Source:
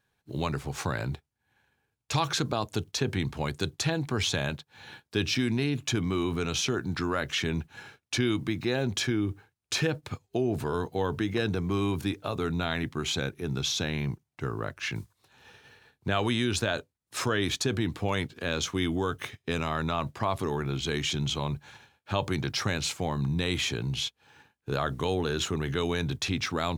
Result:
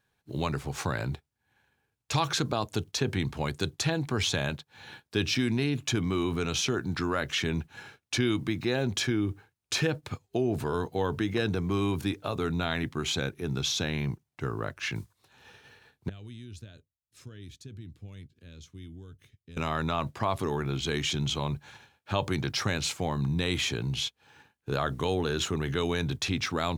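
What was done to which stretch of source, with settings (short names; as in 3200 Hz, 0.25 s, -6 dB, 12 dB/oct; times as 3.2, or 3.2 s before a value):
16.09–19.57 passive tone stack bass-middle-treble 10-0-1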